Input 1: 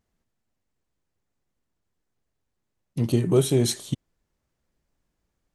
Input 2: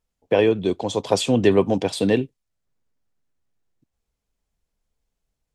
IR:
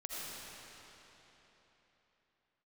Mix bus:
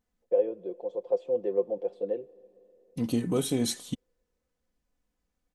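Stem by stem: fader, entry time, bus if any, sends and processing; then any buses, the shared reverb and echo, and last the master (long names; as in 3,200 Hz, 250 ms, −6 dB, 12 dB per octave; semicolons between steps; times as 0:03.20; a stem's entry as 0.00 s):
−5.5 dB, 0.00 s, no send, comb filter 4 ms, depth 59%
−6.0 dB, 0.00 s, send −23 dB, resonant band-pass 500 Hz, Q 5.9; comb filter 5.7 ms, depth 60%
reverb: on, RT60 3.8 s, pre-delay 40 ms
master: no processing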